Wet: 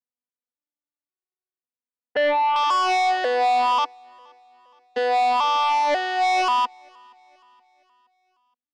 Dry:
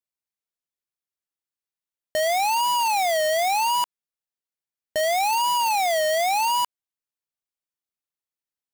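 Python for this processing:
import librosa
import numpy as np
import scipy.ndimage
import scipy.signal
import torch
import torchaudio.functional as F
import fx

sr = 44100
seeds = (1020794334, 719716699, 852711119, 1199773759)

y = fx.vocoder_arp(x, sr, chord='minor triad', root=59, every_ms=540)
y = fx.lowpass(y, sr, hz=fx.steps((0.0, 2000.0), (2.56, 5100.0)), slope=24)
y = fx.fold_sine(y, sr, drive_db=7, ceiling_db=-13.0)
y = fx.echo_feedback(y, sr, ms=471, feedback_pct=48, wet_db=-20)
y = fx.upward_expand(y, sr, threshold_db=-34.0, expansion=1.5)
y = y * 10.0 ** (-3.5 / 20.0)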